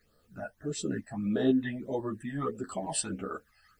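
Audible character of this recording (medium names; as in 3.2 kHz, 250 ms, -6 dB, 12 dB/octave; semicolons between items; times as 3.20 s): a quantiser's noise floor 12-bit, dither triangular; phasing stages 12, 1.6 Hz, lowest notch 370–2300 Hz; tremolo saw up 2 Hz, depth 35%; a shimmering, thickened sound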